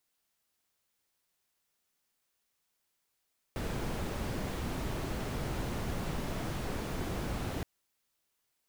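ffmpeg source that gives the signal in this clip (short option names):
-f lavfi -i "anoisesrc=c=brown:a=0.0832:d=4.07:r=44100:seed=1"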